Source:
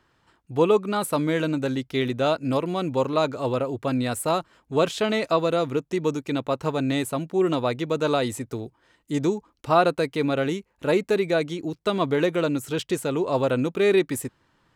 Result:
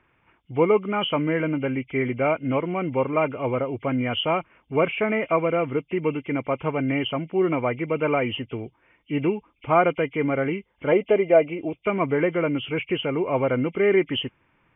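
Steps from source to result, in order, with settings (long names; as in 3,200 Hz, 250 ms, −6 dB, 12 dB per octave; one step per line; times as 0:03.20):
hearing-aid frequency compression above 2,000 Hz 4 to 1
0:10.92–0:11.85: graphic EQ with 15 bands 160 Hz −4 dB, 630 Hz +10 dB, 1,600 Hz −5 dB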